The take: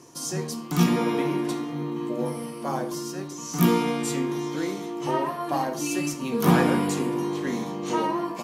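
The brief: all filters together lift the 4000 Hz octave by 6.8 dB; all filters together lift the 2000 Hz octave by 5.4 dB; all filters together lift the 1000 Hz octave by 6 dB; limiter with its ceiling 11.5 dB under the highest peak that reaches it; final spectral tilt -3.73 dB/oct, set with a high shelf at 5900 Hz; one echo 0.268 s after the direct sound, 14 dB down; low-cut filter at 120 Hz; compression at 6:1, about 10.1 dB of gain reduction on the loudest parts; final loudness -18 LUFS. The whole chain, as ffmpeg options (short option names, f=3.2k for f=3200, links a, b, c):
-af "highpass=120,equalizer=f=1k:t=o:g=6,equalizer=f=2k:t=o:g=3,equalizer=f=4k:t=o:g=6,highshelf=f=5.9k:g=4.5,acompressor=threshold=-24dB:ratio=6,alimiter=limit=-21dB:level=0:latency=1,aecho=1:1:268:0.2,volume=12dB"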